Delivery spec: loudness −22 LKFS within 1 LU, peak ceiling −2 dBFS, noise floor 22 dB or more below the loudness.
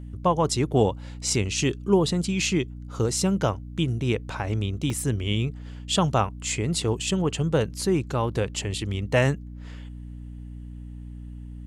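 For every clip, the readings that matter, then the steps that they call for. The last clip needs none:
number of dropouts 1; longest dropout 2.2 ms; mains hum 60 Hz; hum harmonics up to 300 Hz; level of the hum −36 dBFS; integrated loudness −25.5 LKFS; sample peak −7.5 dBFS; target loudness −22.0 LKFS
→ repair the gap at 0:04.90, 2.2 ms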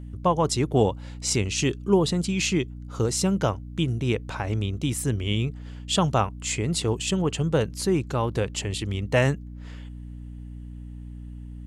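number of dropouts 0; mains hum 60 Hz; hum harmonics up to 300 Hz; level of the hum −36 dBFS
→ hum removal 60 Hz, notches 5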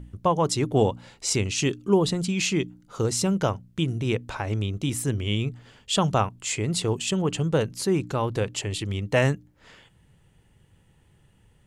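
mains hum none found; integrated loudness −25.5 LKFS; sample peak −8.0 dBFS; target loudness −22.0 LKFS
→ level +3.5 dB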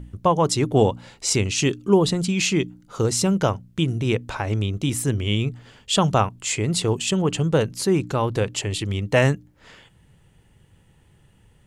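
integrated loudness −22.0 LKFS; sample peak −4.5 dBFS; background noise floor −57 dBFS

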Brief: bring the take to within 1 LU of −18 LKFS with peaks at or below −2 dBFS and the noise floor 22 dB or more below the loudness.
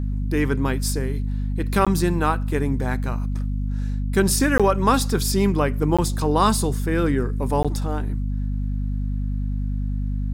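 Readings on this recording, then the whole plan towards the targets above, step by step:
number of dropouts 4; longest dropout 16 ms; mains hum 50 Hz; hum harmonics up to 250 Hz; level of the hum −22 dBFS; integrated loudness −22.5 LKFS; sample peak −4.5 dBFS; target loudness −18.0 LKFS
→ repair the gap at 0:01.85/0:04.58/0:05.97/0:07.63, 16 ms
hum removal 50 Hz, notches 5
level +4.5 dB
brickwall limiter −2 dBFS

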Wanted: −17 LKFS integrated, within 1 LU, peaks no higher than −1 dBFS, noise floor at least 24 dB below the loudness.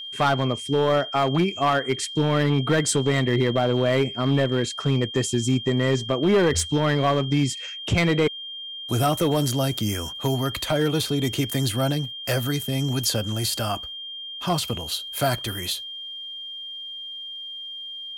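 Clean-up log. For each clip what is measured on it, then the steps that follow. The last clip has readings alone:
share of clipped samples 1.4%; peaks flattened at −14.0 dBFS; interfering tone 3,200 Hz; level of the tone −33 dBFS; integrated loudness −24.0 LKFS; sample peak −14.0 dBFS; target loudness −17.0 LKFS
→ clipped peaks rebuilt −14 dBFS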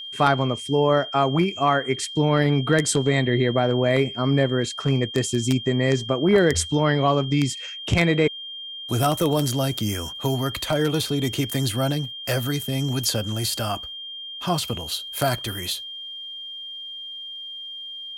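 share of clipped samples 0.0%; interfering tone 3,200 Hz; level of the tone −33 dBFS
→ notch filter 3,200 Hz, Q 30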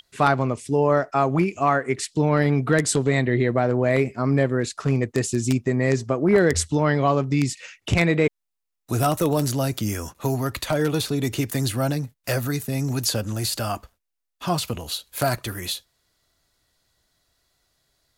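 interfering tone none found; integrated loudness −23.0 LKFS; sample peak −4.5 dBFS; target loudness −17.0 LKFS
→ level +6 dB
brickwall limiter −1 dBFS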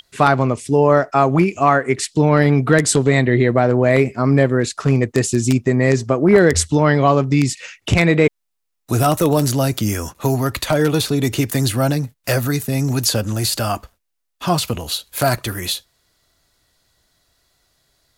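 integrated loudness −17.0 LKFS; sample peak −1.0 dBFS; background noise floor −74 dBFS

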